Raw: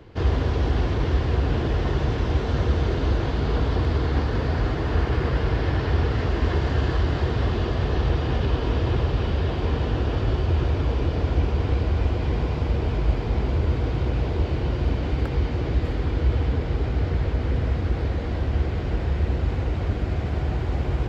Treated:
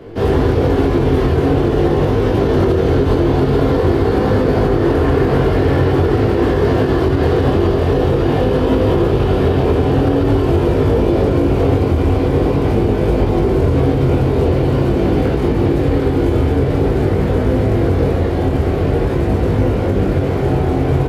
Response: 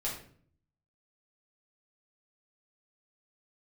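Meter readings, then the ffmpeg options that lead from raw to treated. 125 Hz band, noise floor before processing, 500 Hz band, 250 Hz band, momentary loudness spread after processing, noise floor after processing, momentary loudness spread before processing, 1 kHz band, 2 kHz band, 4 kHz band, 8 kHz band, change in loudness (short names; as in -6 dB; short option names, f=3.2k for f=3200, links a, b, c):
+7.5 dB, -27 dBFS, +15.0 dB, +14.0 dB, 2 LU, -17 dBFS, 3 LU, +10.5 dB, +7.0 dB, +5.5 dB, n/a, +9.5 dB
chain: -filter_complex "[0:a]lowshelf=f=170:g=-4,acrusher=bits=7:mode=log:mix=0:aa=0.000001,areverse,acompressor=mode=upward:threshold=-28dB:ratio=2.5,areverse,aresample=32000,aresample=44100,flanger=delay=19.5:depth=3.2:speed=0.46,asplit=2[a][b];[b]equalizer=f=310:w=0.33:g=14.5[c];[1:a]atrim=start_sample=2205,atrim=end_sample=3528,asetrate=26901,aresample=44100[d];[c][d]afir=irnorm=-1:irlink=0,volume=-5dB[e];[a][e]amix=inputs=2:normalize=0,alimiter=limit=-9dB:level=0:latency=1:release=82,volume=4dB"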